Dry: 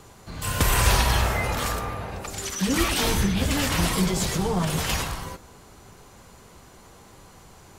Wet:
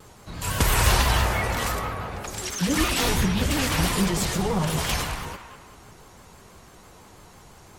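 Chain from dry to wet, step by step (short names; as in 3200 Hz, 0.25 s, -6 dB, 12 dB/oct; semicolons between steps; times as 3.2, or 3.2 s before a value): on a send: band-limited delay 0.202 s, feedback 40%, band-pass 1400 Hz, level -7.5 dB; on the sum: shaped vibrato square 6 Hz, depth 100 cents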